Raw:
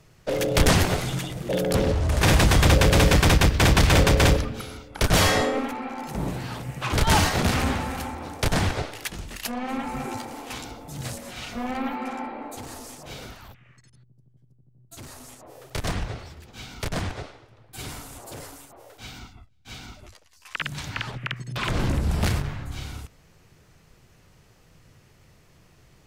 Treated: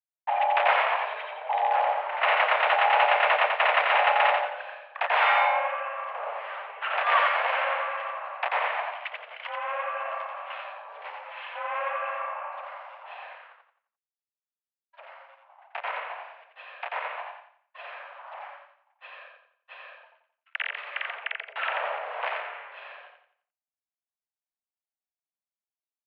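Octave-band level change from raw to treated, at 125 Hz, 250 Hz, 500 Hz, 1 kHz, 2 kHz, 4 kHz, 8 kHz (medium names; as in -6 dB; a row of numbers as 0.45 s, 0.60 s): under -40 dB, under -40 dB, -3.5 dB, +5.0 dB, +2.0 dB, -7.0 dB, under -40 dB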